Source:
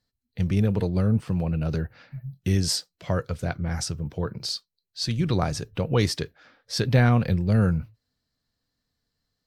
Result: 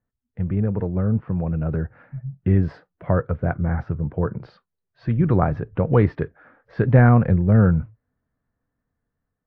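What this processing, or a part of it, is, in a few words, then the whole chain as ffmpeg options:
action camera in a waterproof case: -filter_complex "[0:a]asettb=1/sr,asplit=3[link_01][link_02][link_03];[link_01]atrim=end=2.774[link_04];[link_02]atrim=start=2.77:end=4.37,asetpts=PTS-STARTPTS,afade=type=in:duration=0.004:curve=qsin,afade=type=out:start_time=1.596:duration=0.004:curve=qsin,highshelf=frequency=4100:gain=-7.5[link_05];[link_03]atrim=start=4.366[link_06];[link_04][link_05]acrossfade=duration=0.004:curve1=hsin:curve2=qsin[link_07];[link_07][link_06]acrossfade=duration=0.004:curve1=qsin:curve2=hsin,lowpass=frequency=1700:width=0.5412,lowpass=frequency=1700:width=1.3066,dynaudnorm=framelen=770:gausssize=5:maxgain=6.5dB" -ar 24000 -c:a aac -b:a 64k

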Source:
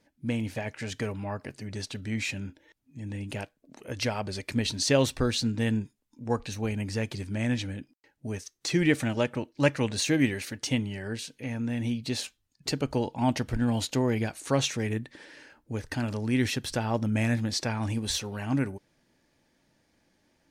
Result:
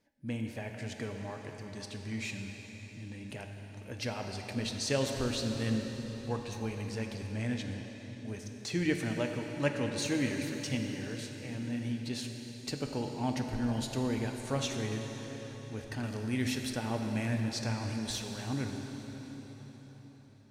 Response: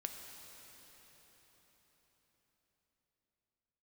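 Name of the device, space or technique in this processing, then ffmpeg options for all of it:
cathedral: -filter_complex "[1:a]atrim=start_sample=2205[link_01];[0:a][link_01]afir=irnorm=-1:irlink=0,asettb=1/sr,asplit=3[link_02][link_03][link_04];[link_02]atrim=end=16.034[link_05];[link_03]atrim=start=16.03:end=16.73,asetpts=PTS-STARTPTS,afade=type=in:duration=0.004:curve=qsin,afade=type=out:start_time=0.696:duration=0.004:curve=qsin,highshelf=frequency=4800:gain=5[link_06];[link_04]atrim=start=16.726[link_07];[link_05][link_06]acrossfade=duration=0.004:curve1=hsin:curve2=qsin[link_08];[link_08][link_07]acrossfade=duration=0.004:curve1=qsin:curve2=hsin,volume=-4.5dB"

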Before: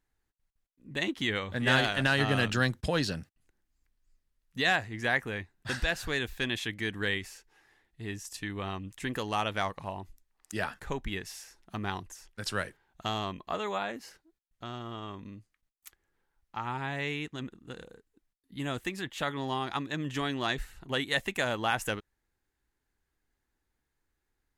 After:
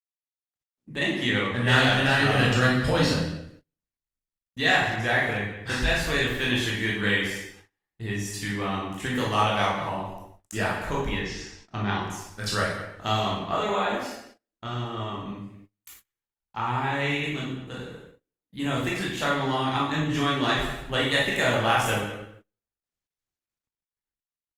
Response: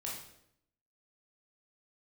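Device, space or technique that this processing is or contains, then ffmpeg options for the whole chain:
speakerphone in a meeting room: -filter_complex "[0:a]asplit=3[link_01][link_02][link_03];[link_01]afade=type=out:start_time=11.12:duration=0.02[link_04];[link_02]lowpass=frequency=6100:width=0.5412,lowpass=frequency=6100:width=1.3066,afade=type=in:start_time=11.12:duration=0.02,afade=type=out:start_time=12:duration=0.02[link_05];[link_03]afade=type=in:start_time=12:duration=0.02[link_06];[link_04][link_05][link_06]amix=inputs=3:normalize=0[link_07];[1:a]atrim=start_sample=2205[link_08];[link_07][link_08]afir=irnorm=-1:irlink=0,asplit=2[link_09][link_10];[link_10]adelay=180,highpass=300,lowpass=3400,asoftclip=type=hard:threshold=-22.5dB,volume=-11dB[link_11];[link_09][link_11]amix=inputs=2:normalize=0,dynaudnorm=framelen=420:gausssize=3:maxgain=11.5dB,agate=range=-28dB:threshold=-45dB:ratio=16:detection=peak,volume=-4dB" -ar 48000 -c:a libopus -b:a 32k

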